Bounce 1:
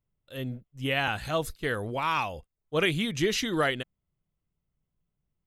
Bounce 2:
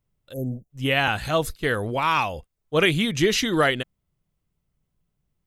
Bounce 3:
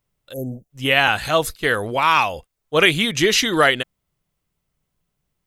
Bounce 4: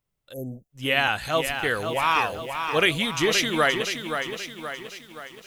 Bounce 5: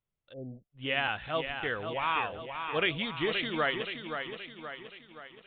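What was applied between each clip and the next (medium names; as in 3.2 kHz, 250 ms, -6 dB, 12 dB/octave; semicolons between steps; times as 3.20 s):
spectral selection erased 0.33–0.70 s, 870–5500 Hz; trim +6 dB
bass shelf 350 Hz -9 dB; trim +6.5 dB
bit-crushed delay 524 ms, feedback 55%, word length 7-bit, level -7 dB; trim -6 dB
resampled via 8 kHz; trim -8 dB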